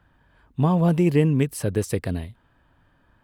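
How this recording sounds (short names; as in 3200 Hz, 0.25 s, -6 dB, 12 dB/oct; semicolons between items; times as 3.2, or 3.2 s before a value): noise floor -62 dBFS; spectral tilt -8.0 dB/oct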